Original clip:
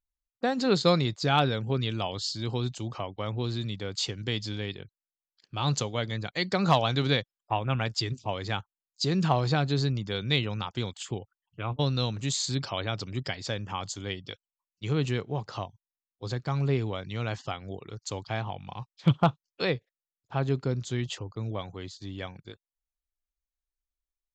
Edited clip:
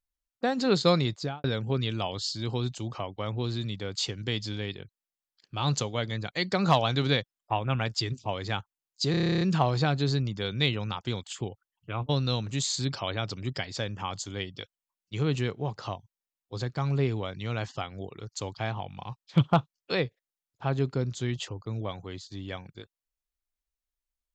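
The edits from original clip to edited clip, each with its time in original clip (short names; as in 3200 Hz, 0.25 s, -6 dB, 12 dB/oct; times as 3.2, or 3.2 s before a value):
1.13–1.44 studio fade out
9.11 stutter 0.03 s, 11 plays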